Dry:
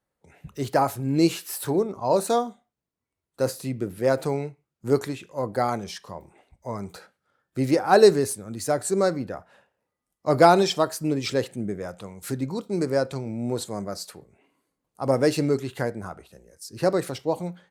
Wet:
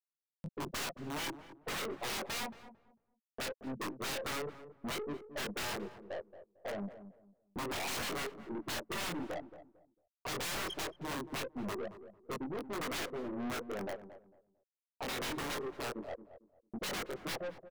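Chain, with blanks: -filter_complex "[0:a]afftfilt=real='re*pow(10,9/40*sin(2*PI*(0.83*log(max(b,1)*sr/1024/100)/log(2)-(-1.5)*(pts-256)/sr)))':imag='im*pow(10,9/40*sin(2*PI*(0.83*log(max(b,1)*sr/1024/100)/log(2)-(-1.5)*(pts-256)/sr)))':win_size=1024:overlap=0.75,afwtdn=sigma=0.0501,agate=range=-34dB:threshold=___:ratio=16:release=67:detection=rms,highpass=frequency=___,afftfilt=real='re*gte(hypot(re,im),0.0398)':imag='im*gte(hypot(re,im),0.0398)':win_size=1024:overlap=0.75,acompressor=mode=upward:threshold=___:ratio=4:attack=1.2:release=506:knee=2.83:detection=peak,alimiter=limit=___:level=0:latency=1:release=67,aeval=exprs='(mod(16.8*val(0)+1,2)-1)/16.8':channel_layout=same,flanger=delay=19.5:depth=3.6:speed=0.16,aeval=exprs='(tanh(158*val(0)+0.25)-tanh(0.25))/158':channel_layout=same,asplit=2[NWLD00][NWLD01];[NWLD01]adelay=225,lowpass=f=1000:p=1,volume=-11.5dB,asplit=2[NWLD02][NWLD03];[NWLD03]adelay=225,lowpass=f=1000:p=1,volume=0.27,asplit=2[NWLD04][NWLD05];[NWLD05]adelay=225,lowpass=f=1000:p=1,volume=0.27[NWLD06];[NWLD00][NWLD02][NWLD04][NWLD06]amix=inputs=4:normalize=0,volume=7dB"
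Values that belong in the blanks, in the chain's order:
-44dB, 320, -27dB, -13.5dB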